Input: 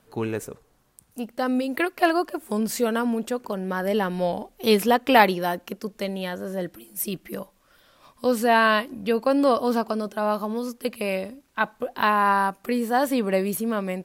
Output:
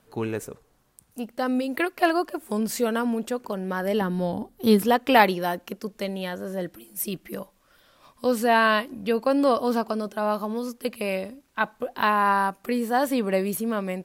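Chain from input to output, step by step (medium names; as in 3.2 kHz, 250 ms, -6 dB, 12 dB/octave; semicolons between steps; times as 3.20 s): 4.01–4.85 s: fifteen-band graphic EQ 100 Hz +11 dB, 250 Hz +7 dB, 630 Hz -6 dB, 2.5 kHz -10 dB, 6.3 kHz -6 dB; trim -1 dB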